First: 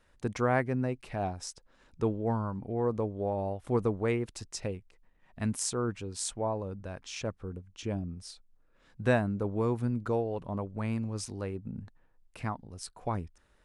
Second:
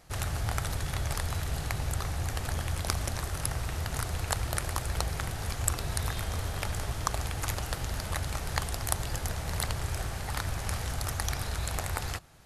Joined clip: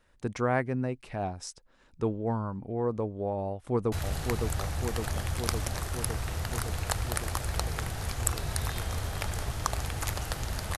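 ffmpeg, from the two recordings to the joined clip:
-filter_complex "[0:a]apad=whole_dur=10.77,atrim=end=10.77,atrim=end=3.922[a];[1:a]atrim=start=1.328:end=8.18[b];[a][b]acrossfade=d=0.004:c1=hsin:c2=hsin,asplit=2[c][d];[d]afade=t=in:st=3.47:d=0.01,afade=t=out:st=3.92:d=0.01,aecho=0:1:560|1120|1680|2240|2800|3360|3920|4480|5040|5600|6160|6720:0.595662|0.446747|0.33506|0.251295|0.188471|0.141353|0.106015|0.0795113|0.0596335|0.0447251|0.0335438|0.0251579[e];[c][e]amix=inputs=2:normalize=0"

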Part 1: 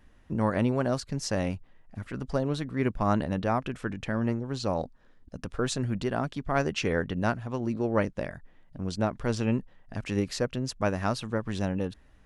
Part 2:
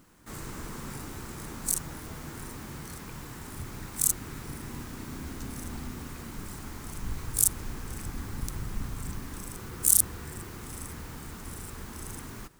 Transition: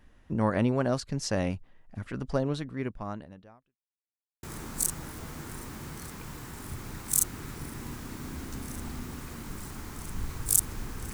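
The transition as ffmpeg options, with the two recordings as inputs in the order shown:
-filter_complex "[0:a]apad=whole_dur=11.13,atrim=end=11.13,asplit=2[a][b];[a]atrim=end=3.79,asetpts=PTS-STARTPTS,afade=t=out:st=2.42:d=1.37:c=qua[c];[b]atrim=start=3.79:end=4.43,asetpts=PTS-STARTPTS,volume=0[d];[1:a]atrim=start=1.31:end=8.01,asetpts=PTS-STARTPTS,afade=t=in:d=0.004:c=hsin[e];[c][d][e]concat=n=3:v=0:a=1"

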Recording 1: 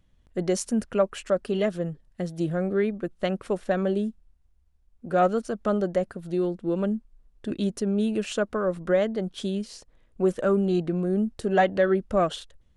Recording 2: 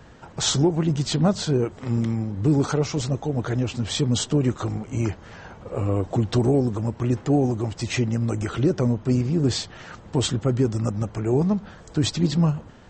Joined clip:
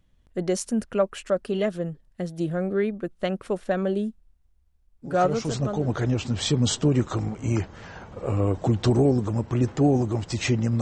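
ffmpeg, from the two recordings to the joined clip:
-filter_complex "[0:a]apad=whole_dur=10.81,atrim=end=10.81,atrim=end=6,asetpts=PTS-STARTPTS[a];[1:a]atrim=start=2.51:end=8.3,asetpts=PTS-STARTPTS[b];[a][b]acrossfade=d=0.98:c1=qsin:c2=qsin"

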